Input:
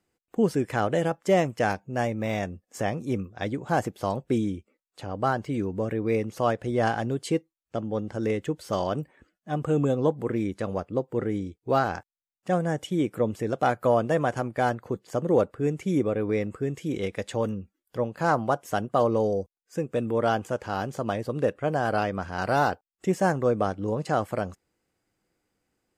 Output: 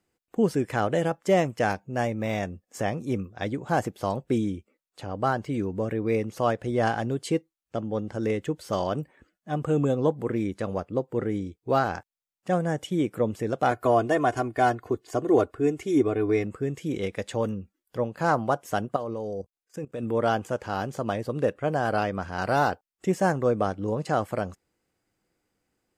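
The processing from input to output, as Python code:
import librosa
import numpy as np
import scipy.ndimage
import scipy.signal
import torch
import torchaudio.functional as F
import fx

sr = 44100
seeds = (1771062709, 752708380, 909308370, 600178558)

y = fx.comb(x, sr, ms=2.8, depth=0.78, at=(13.71, 16.44))
y = fx.level_steps(y, sr, step_db=16, at=(18.96, 20.03))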